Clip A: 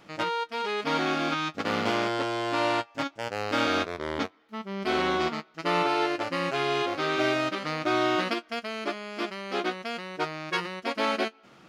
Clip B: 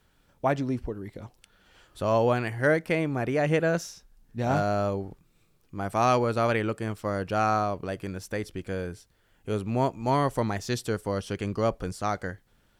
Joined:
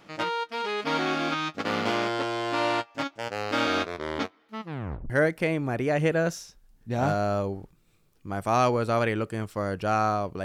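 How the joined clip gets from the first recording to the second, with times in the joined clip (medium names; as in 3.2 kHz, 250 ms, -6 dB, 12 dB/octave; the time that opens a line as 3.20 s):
clip A
4.61 s: tape stop 0.49 s
5.10 s: go over to clip B from 2.58 s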